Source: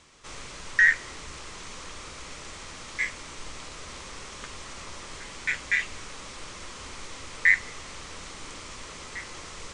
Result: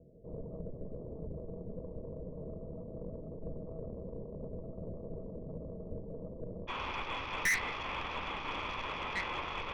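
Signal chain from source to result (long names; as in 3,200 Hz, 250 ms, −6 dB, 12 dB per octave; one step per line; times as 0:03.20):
Chebyshev low-pass with heavy ripple 670 Hz, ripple 9 dB, from 0:06.67 3,500 Hz
tube saturation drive 39 dB, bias 0.55
level +12 dB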